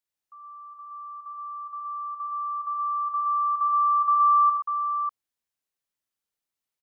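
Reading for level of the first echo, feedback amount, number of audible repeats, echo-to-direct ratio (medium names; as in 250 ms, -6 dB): -4.5 dB, no regular repeats, 3, -1.5 dB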